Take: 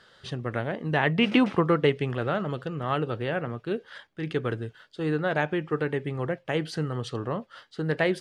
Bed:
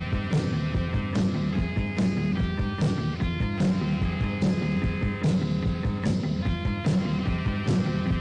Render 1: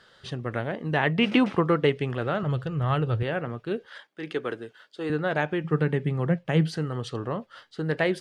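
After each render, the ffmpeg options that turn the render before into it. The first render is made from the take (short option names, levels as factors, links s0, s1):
-filter_complex "[0:a]asettb=1/sr,asplit=3[s0][s1][s2];[s0]atrim=end=2.434[s3];[s1]atrim=start=2.43:end=3.23,asetpts=PTS-STARTPTS,afade=t=in:d=0.004:c=qsin,afade=t=out:st=0.796:d=0.004:c=qsin,lowshelf=f=160:t=q:w=1.5:g=9[s4];[s2]atrim=start=3.226[s5];[s3][s4]acrossfade=d=0.004:c1=hsin:c2=qsin[s6];[s6][s5]acrossfade=d=0.004:c1=qsin:c2=hsin,asettb=1/sr,asplit=3[s7][s8][s9];[s7]atrim=end=3.864[s10];[s8]atrim=start=3.86:end=5.1,asetpts=PTS-STARTPTS,afade=t=in:d=0.004:c=qsin,afade=t=out:st=1.236:d=0.004:c=qsin,highpass=280[s11];[s9]atrim=start=5.096[s12];[s10][s11]acrossfade=d=0.004:c1=hsin:c2=qsin[s13];[s13][s12]acrossfade=d=0.004:c1=qsin:c2=hsin,asettb=1/sr,asplit=3[s14][s15][s16];[s14]atrim=end=5.644[s17];[s15]atrim=start=5.64:end=6.75,asetpts=PTS-STARTPTS,afade=t=in:d=0.004:c=qsin,afade=t=out:st=1.106:d=0.004:c=qsin,equalizer=f=170:t=o:w=0.56:g=13.5[s18];[s16]atrim=start=6.746[s19];[s17][s18]acrossfade=d=0.004:c1=hsin:c2=qsin[s20];[s20][s19]acrossfade=d=0.004:c1=qsin:c2=hsin"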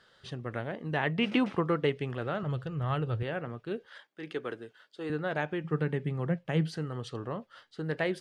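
-af "volume=0.501"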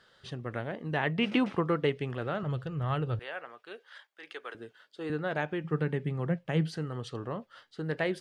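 -filter_complex "[0:a]asettb=1/sr,asplit=3[s0][s1][s2];[s0]atrim=end=3.194[s3];[s1]atrim=start=3.19:end=4.55,asetpts=PTS-STARTPTS,afade=t=in:d=0.004:c=qsin,afade=t=out:st=1.356:d=0.004:c=qsin,highpass=750[s4];[s2]atrim=start=4.546[s5];[s3][s4]acrossfade=d=0.004:c1=hsin:c2=qsin[s6];[s6][s5]acrossfade=d=0.004:c1=qsin:c2=hsin"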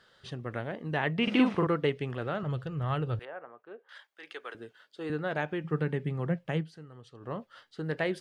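-filter_complex "[0:a]asettb=1/sr,asplit=3[s0][s1][s2];[s0]atrim=end=1.234[s3];[s1]atrim=start=1.23:end=1.67,asetpts=PTS-STARTPTS,afade=t=in:d=0.004:c=qsin,afade=t=out:st=0.436:d=0.004:c=qsin,asplit=2[s4][s5];[s5]adelay=43,volume=0.794[s6];[s4][s6]amix=inputs=2:normalize=0,atrim=end_sample=19404[s7];[s2]atrim=start=1.666[s8];[s3][s7]acrossfade=d=0.004:c1=hsin:c2=qsin[s9];[s9][s8]acrossfade=d=0.004:c1=qsin:c2=hsin,asettb=1/sr,asplit=3[s10][s11][s12];[s10]atrim=end=3.254[s13];[s11]atrim=start=3.25:end=3.89,asetpts=PTS-STARTPTS,afade=t=in:d=0.004:c=qsin,afade=t=out:st=0.636:d=0.004:c=qsin,lowpass=1100[s14];[s12]atrim=start=3.886[s15];[s13][s14]acrossfade=d=0.004:c1=hsin:c2=qsin[s16];[s16][s15]acrossfade=d=0.004:c1=qsin:c2=hsin,asplit=3[s17][s18][s19];[s17]atrim=end=6.65,asetpts=PTS-STARTPTS,afade=t=out:st=6.53:d=0.12:silence=0.223872[s20];[s18]atrim=start=6.65:end=7.2,asetpts=PTS-STARTPTS,volume=0.224[s21];[s19]atrim=start=7.2,asetpts=PTS-STARTPTS,afade=t=in:d=0.12:silence=0.223872[s22];[s20][s21][s22]concat=n=3:v=0:a=1"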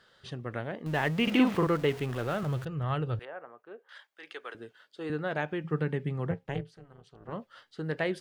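-filter_complex "[0:a]asettb=1/sr,asplit=3[s0][s1][s2];[s0]atrim=end=0.864[s3];[s1]atrim=start=0.86:end=2.65,asetpts=PTS-STARTPTS,afade=t=in:d=0.004:c=qsin,afade=t=out:st=1.786:d=0.004:c=qsin,aeval=exprs='val(0)+0.5*0.0119*sgn(val(0))':c=same[s4];[s2]atrim=start=2.646[s5];[s3][s4]acrossfade=d=0.004:c1=hsin:c2=qsin[s6];[s6][s5]acrossfade=d=0.004:c1=qsin:c2=hsin,asettb=1/sr,asplit=3[s7][s8][s9];[s7]atrim=end=6.314[s10];[s8]atrim=start=6.31:end=7.33,asetpts=PTS-STARTPTS,afade=t=in:d=0.004:c=qsin,afade=t=out:st=1.016:d=0.004:c=qsin,tremolo=f=280:d=0.974[s11];[s9]atrim=start=7.326[s12];[s10][s11]acrossfade=d=0.004:c1=hsin:c2=qsin[s13];[s13][s12]acrossfade=d=0.004:c1=qsin:c2=hsin"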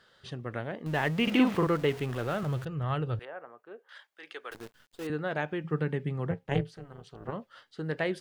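-filter_complex "[0:a]asettb=1/sr,asplit=3[s0][s1][s2];[s0]atrim=end=4.514[s3];[s1]atrim=start=4.51:end=5.07,asetpts=PTS-STARTPTS,afade=t=in:d=0.004:c=qsin,afade=t=out:st=0.556:d=0.004:c=qsin,acrusher=bits=8:dc=4:mix=0:aa=0.000001[s4];[s2]atrim=start=5.066[s5];[s3][s4]acrossfade=d=0.004:c1=hsin:c2=qsin[s6];[s6][s5]acrossfade=d=0.004:c1=qsin:c2=hsin,asettb=1/sr,asplit=3[s7][s8][s9];[s7]atrim=end=6.514[s10];[s8]atrim=start=6.51:end=7.31,asetpts=PTS-STARTPTS,afade=t=in:d=0.004:c=qsin,afade=t=out:st=0.796:d=0.004:c=qsin,acontrast=67[s11];[s9]atrim=start=7.306[s12];[s10][s11]acrossfade=d=0.004:c1=hsin:c2=qsin[s13];[s13][s12]acrossfade=d=0.004:c1=qsin:c2=hsin"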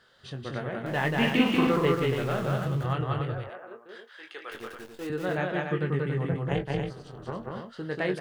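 -filter_complex "[0:a]asplit=2[s0][s1];[s1]adelay=22,volume=0.473[s2];[s0][s2]amix=inputs=2:normalize=0,aecho=1:1:186.6|279.9:0.794|0.501"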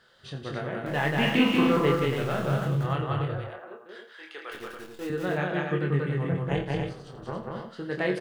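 -filter_complex "[0:a]asplit=2[s0][s1];[s1]adelay=28,volume=0.447[s2];[s0][s2]amix=inputs=2:normalize=0,aecho=1:1:85:0.211"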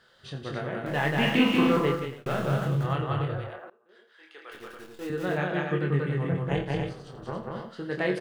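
-filter_complex "[0:a]asplit=3[s0][s1][s2];[s0]atrim=end=2.26,asetpts=PTS-STARTPTS,afade=t=out:st=1.76:d=0.5[s3];[s1]atrim=start=2.26:end=3.7,asetpts=PTS-STARTPTS,afade=t=in:d=0.004:c=hsin,afade=t=out:st=1.436:d=0.004:c=hsin:silence=0.0794328[s4];[s2]atrim=start=3.7,asetpts=PTS-STARTPTS,afade=t=in:d=1.6:silence=0.0794328[s5];[s3][s4][s5]concat=n=3:v=0:a=1"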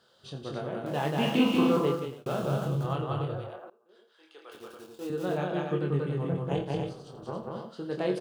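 -af "highpass=f=150:p=1,equalizer=f=1900:t=o:w=0.73:g=-14"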